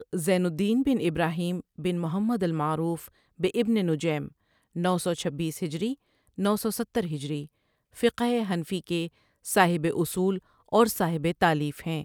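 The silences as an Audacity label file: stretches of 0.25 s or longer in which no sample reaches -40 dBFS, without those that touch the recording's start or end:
3.080000	3.400000	silence
4.280000	4.760000	silence
5.940000	6.380000	silence
7.450000	7.970000	silence
9.080000	9.450000	silence
10.390000	10.720000	silence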